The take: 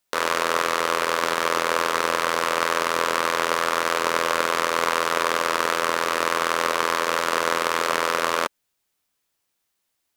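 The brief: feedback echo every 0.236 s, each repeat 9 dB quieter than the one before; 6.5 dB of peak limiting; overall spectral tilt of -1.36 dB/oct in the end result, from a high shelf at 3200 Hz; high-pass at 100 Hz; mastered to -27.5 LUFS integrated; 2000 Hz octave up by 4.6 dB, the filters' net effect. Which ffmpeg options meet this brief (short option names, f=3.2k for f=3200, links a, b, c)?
-af "highpass=100,equalizer=f=2k:t=o:g=3.5,highshelf=f=3.2k:g=7.5,alimiter=limit=-3dB:level=0:latency=1,aecho=1:1:236|472|708|944:0.355|0.124|0.0435|0.0152,volume=-6dB"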